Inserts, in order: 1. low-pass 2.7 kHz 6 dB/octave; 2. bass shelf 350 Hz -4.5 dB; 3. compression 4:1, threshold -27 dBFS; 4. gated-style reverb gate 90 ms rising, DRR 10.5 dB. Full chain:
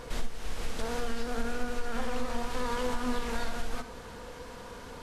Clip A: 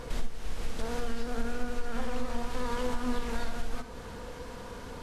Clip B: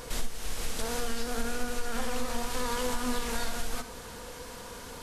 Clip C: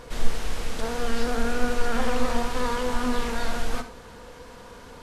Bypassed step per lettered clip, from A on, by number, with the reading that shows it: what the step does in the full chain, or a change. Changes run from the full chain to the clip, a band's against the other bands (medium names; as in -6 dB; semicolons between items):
2, momentary loudness spread change -2 LU; 1, 8 kHz band +8.5 dB; 3, mean gain reduction 5.5 dB